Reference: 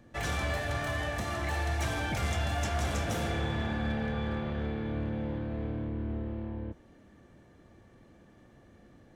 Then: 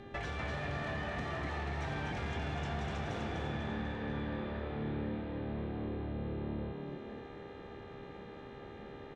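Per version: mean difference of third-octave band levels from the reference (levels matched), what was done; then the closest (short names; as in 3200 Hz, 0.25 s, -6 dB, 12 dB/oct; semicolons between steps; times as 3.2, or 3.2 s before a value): 6.5 dB: LPF 3900 Hz 12 dB/oct; compressor 5:1, threshold -43 dBFS, peak gain reduction 14 dB; buzz 400 Hz, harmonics 10, -58 dBFS -7 dB/oct; frequency-shifting echo 0.247 s, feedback 48%, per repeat +72 Hz, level -4 dB; gain +4.5 dB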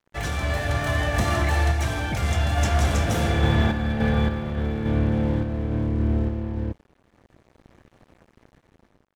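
4.0 dB: low shelf 150 Hz +5 dB; AGC gain up to 5 dB; crossover distortion -48 dBFS; random-step tremolo; gain +6 dB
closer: second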